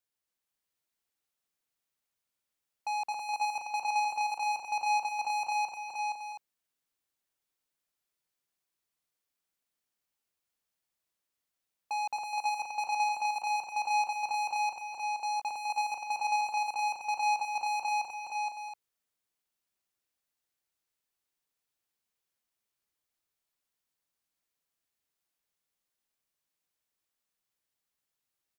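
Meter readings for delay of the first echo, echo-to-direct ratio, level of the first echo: 256 ms, −0.5 dB, −5.5 dB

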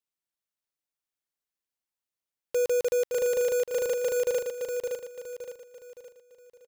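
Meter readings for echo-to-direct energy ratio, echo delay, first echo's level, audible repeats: −4.0 dB, 566 ms, −5.0 dB, 4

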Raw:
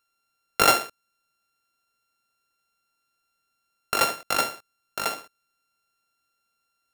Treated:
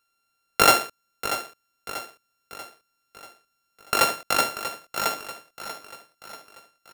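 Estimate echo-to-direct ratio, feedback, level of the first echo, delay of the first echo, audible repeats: −10.5 dB, 49%, −11.5 dB, 638 ms, 4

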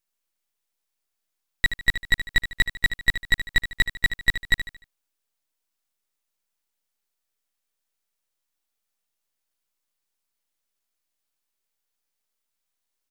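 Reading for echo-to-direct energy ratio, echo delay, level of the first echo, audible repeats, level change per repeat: −10.0 dB, 75 ms, −10.5 dB, 3, −8.5 dB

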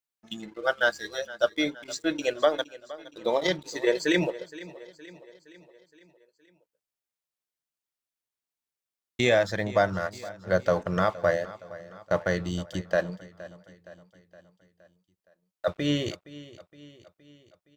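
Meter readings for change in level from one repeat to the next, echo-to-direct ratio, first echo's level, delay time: −5.5 dB, −16.5 dB, −18.0 dB, 467 ms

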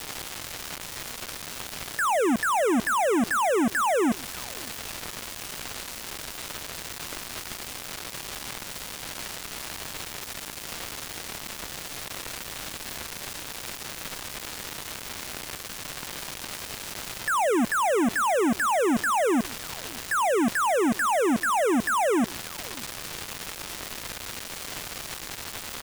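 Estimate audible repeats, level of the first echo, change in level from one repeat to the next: 1, −24.0 dB, repeats not evenly spaced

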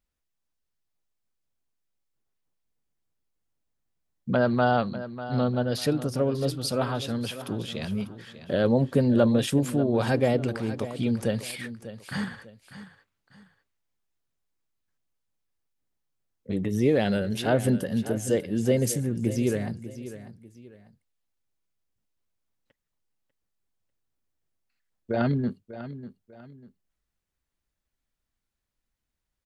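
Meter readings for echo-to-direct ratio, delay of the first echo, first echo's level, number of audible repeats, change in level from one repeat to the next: −13.0 dB, 595 ms, −13.5 dB, 2, −10.0 dB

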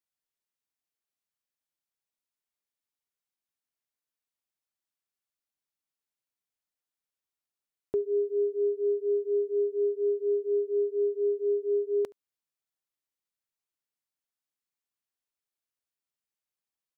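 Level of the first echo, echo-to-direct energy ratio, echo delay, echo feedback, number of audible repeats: −24.0 dB, −24.0 dB, 72 ms, repeats not evenly spaced, 1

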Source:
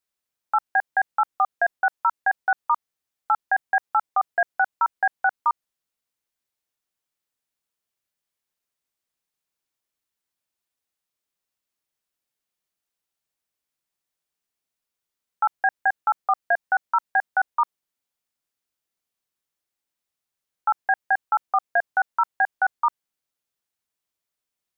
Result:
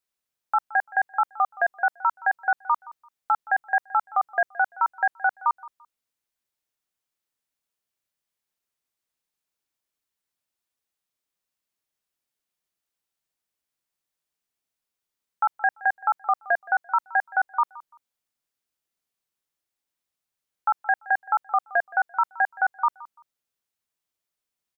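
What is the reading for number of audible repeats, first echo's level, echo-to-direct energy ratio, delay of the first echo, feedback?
2, −20.0 dB, −20.0 dB, 170 ms, 24%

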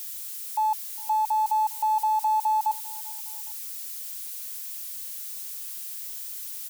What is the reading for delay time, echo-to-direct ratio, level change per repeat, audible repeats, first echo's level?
403 ms, −22.5 dB, −4.5 dB, 2, −24.0 dB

